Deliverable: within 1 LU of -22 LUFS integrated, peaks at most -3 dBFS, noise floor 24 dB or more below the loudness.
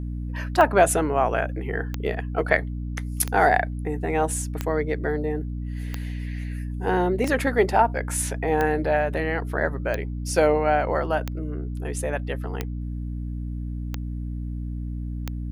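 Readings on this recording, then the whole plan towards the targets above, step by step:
clicks found 12; hum 60 Hz; highest harmonic 300 Hz; hum level -27 dBFS; loudness -25.0 LUFS; peak level -3.5 dBFS; loudness target -22.0 LUFS
-> de-click; hum notches 60/120/180/240/300 Hz; trim +3 dB; peak limiter -3 dBFS

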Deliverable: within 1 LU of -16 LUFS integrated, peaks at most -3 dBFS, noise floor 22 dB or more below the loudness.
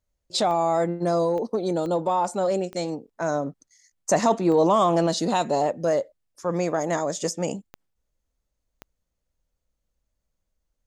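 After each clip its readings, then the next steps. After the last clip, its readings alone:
clicks found 7; loudness -24.0 LUFS; peak level -8.5 dBFS; loudness target -16.0 LUFS
-> de-click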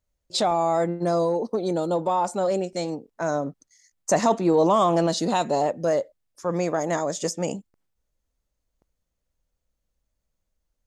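clicks found 0; loudness -24.0 LUFS; peak level -8.5 dBFS; loudness target -16.0 LUFS
-> trim +8 dB; peak limiter -3 dBFS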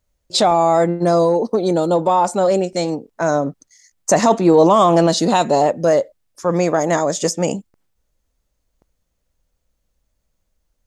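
loudness -16.5 LUFS; peak level -3.0 dBFS; noise floor -72 dBFS

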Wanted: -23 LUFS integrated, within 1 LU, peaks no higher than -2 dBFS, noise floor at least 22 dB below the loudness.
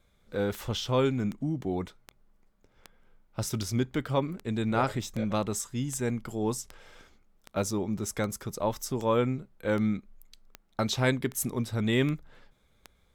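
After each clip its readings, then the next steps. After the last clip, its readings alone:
clicks found 17; loudness -30.5 LUFS; peak level -12.0 dBFS; loudness target -23.0 LUFS
-> de-click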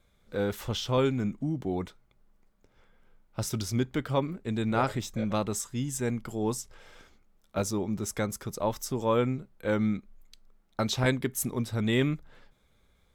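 clicks found 0; loudness -30.5 LUFS; peak level -12.0 dBFS; loudness target -23.0 LUFS
-> trim +7.5 dB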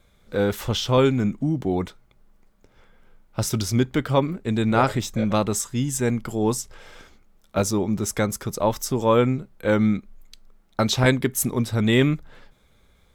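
loudness -23.0 LUFS; peak level -4.5 dBFS; noise floor -59 dBFS

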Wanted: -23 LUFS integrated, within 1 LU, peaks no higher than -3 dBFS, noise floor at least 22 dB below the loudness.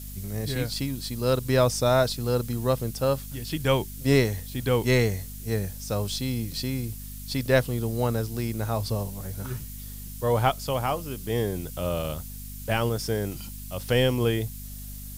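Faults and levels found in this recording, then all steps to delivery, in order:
hum 50 Hz; highest harmonic 250 Hz; hum level -37 dBFS; noise floor -39 dBFS; noise floor target -49 dBFS; loudness -27.0 LUFS; peak level -7.5 dBFS; loudness target -23.0 LUFS
-> hum notches 50/100/150/200/250 Hz; noise reduction 10 dB, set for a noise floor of -39 dBFS; trim +4 dB

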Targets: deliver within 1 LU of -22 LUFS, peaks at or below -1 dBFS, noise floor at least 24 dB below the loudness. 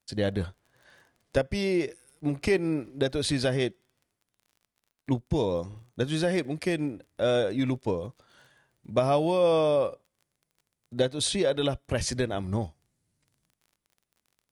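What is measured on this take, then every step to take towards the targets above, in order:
tick rate 28 per s; loudness -28.0 LUFS; peak level -11.5 dBFS; loudness target -22.0 LUFS
-> de-click; trim +6 dB

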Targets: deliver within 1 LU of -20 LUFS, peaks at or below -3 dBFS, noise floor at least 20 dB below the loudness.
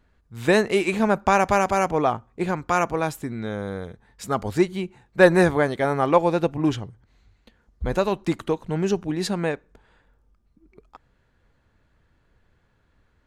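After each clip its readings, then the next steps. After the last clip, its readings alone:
loudness -22.5 LUFS; peak level -2.5 dBFS; loudness target -20.0 LUFS
-> trim +2.5 dB; peak limiter -3 dBFS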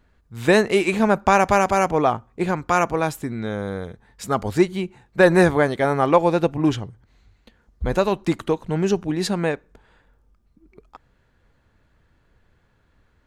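loudness -20.5 LUFS; peak level -3.0 dBFS; noise floor -63 dBFS

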